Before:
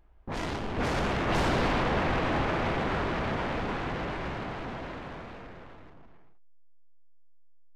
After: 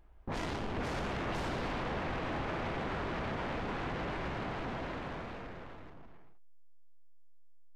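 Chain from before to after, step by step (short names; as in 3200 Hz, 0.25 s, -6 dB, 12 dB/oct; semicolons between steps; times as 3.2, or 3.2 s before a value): compressor, threshold -34 dBFS, peak gain reduction 10.5 dB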